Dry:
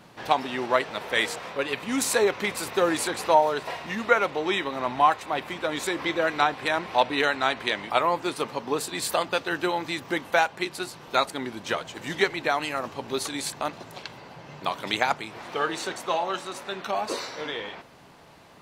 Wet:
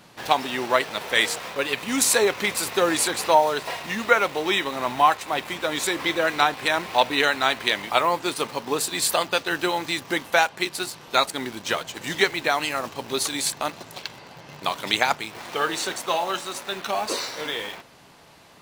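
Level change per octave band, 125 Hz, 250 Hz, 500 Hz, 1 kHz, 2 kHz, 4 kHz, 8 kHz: +1.0, +1.0, +1.5, +2.0, +3.5, +6.0, +7.5 dB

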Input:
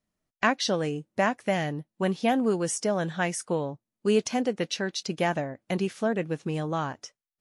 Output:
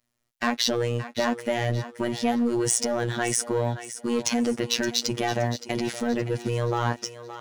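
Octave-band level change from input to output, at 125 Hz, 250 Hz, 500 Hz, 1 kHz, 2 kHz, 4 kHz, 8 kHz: +4.5, +1.5, +0.5, 0.0, 0.0, +5.5, +7.5 dB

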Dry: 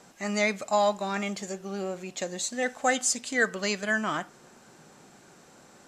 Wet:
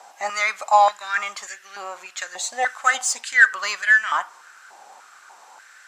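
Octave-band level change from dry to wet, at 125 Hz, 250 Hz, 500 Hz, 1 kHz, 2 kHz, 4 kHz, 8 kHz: under -25 dB, under -20 dB, -2.0 dB, +10.5 dB, +11.5 dB, +4.0 dB, +3.5 dB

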